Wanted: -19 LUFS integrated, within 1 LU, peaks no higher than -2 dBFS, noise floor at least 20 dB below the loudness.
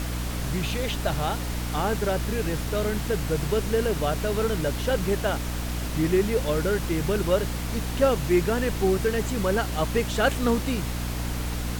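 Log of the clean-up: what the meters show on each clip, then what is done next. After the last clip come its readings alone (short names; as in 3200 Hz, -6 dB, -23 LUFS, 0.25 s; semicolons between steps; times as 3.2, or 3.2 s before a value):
hum 60 Hz; harmonics up to 300 Hz; hum level -28 dBFS; noise floor -30 dBFS; noise floor target -46 dBFS; loudness -26.0 LUFS; peak -8.5 dBFS; loudness target -19.0 LUFS
-> notches 60/120/180/240/300 Hz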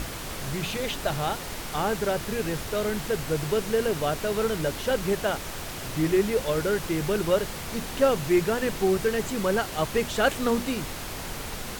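hum none; noise floor -36 dBFS; noise floor target -47 dBFS
-> noise print and reduce 11 dB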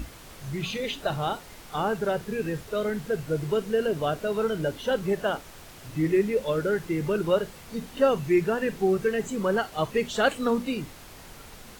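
noise floor -47 dBFS; noise floor target -48 dBFS
-> noise print and reduce 6 dB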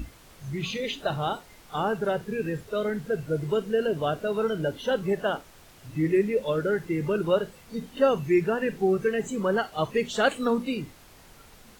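noise floor -52 dBFS; loudness -27.5 LUFS; peak -9.5 dBFS; loudness target -19.0 LUFS
-> gain +8.5 dB; limiter -2 dBFS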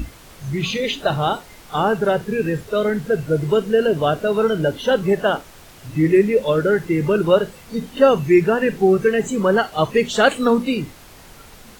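loudness -19.0 LUFS; peak -2.0 dBFS; noise floor -44 dBFS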